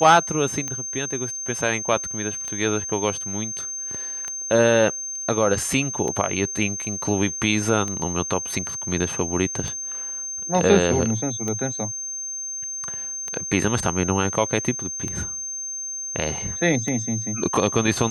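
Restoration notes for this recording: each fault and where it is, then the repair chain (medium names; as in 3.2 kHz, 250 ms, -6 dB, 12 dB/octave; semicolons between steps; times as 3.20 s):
tick 33 1/3 rpm -15 dBFS
whine 6.3 kHz -28 dBFS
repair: de-click; band-stop 6.3 kHz, Q 30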